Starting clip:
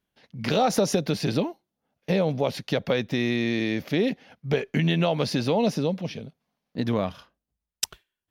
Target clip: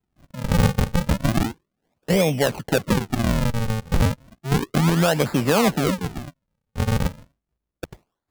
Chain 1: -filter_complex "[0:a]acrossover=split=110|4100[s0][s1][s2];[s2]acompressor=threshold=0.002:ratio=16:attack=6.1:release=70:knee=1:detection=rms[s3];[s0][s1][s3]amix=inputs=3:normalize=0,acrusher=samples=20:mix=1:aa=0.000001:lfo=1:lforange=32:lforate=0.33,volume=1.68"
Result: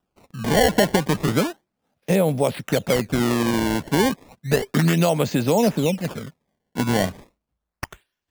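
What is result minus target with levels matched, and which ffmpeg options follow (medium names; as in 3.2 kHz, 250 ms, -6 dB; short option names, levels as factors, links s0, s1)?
decimation with a swept rate: distortion -10 dB
-filter_complex "[0:a]acrossover=split=110|4100[s0][s1][s2];[s2]acompressor=threshold=0.002:ratio=16:attack=6.1:release=70:knee=1:detection=rms[s3];[s0][s1][s3]amix=inputs=3:normalize=0,acrusher=samples=74:mix=1:aa=0.000001:lfo=1:lforange=118:lforate=0.33,volume=1.68"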